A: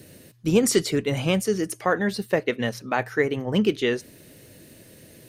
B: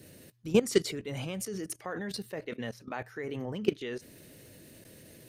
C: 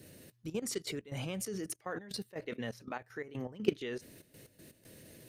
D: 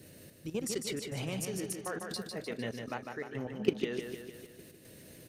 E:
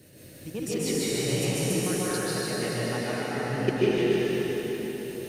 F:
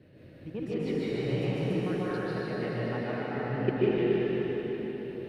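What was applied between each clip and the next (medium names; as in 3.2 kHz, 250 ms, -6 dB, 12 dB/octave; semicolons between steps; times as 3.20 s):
level held to a coarse grid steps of 17 dB; trim -2 dB
trance gate "xxxx.x.x.x" 121 bpm -12 dB; trim -2 dB
feedback delay 151 ms, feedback 56%, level -5.5 dB; trim +1 dB
plate-style reverb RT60 4.7 s, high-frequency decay 0.9×, pre-delay 120 ms, DRR -9.5 dB
distance through air 400 m; trim -1.5 dB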